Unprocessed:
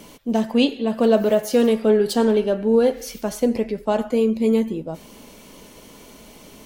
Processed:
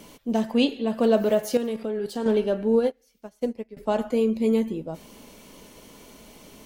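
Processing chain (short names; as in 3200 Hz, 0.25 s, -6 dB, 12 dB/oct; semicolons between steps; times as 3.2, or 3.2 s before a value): 1.57–2.26 level quantiser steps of 12 dB; 2.77–3.77 upward expander 2.5:1, over -31 dBFS; gain -3.5 dB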